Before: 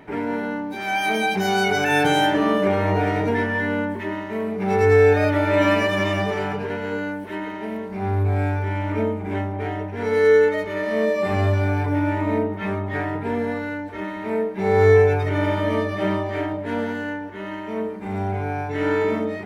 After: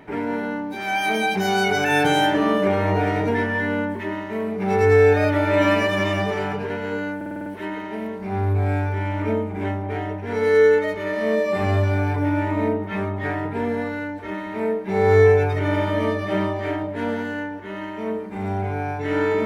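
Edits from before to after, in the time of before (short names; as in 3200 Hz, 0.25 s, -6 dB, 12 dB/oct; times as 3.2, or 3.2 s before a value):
7.16 stutter 0.05 s, 7 plays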